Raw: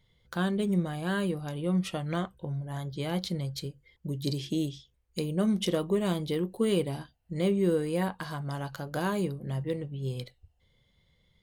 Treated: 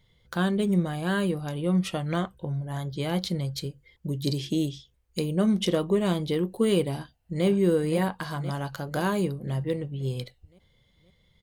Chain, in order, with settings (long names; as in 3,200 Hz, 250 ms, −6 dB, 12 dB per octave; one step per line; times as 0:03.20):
0:05.38–0:06.39: high-shelf EQ 11,000 Hz −7 dB
0:06.94–0:07.46: delay throw 520 ms, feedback 55%, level −8 dB
level +3.5 dB